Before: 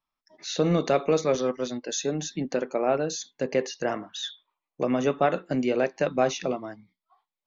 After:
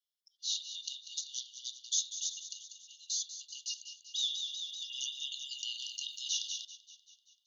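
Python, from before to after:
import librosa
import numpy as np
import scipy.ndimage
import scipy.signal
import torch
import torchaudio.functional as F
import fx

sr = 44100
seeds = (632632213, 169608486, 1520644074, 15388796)

y = fx.brickwall_highpass(x, sr, low_hz=2800.0)
y = fx.echo_feedback(y, sr, ms=193, feedback_pct=59, wet_db=-11.0)
y = fx.env_flatten(y, sr, amount_pct=50, at=(4.18, 6.65))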